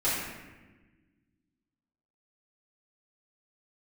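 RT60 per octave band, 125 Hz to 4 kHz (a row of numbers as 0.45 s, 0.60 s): 2.1 s, 2.2 s, 1.4 s, 1.1 s, 1.2 s, 0.85 s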